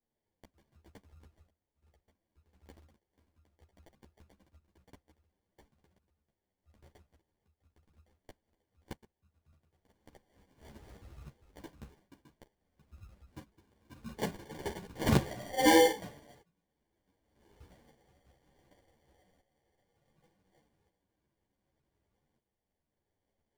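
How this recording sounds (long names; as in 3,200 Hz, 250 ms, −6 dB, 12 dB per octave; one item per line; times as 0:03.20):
aliases and images of a low sample rate 1,300 Hz, jitter 0%
tremolo saw up 0.67 Hz, depth 65%
a shimmering, thickened sound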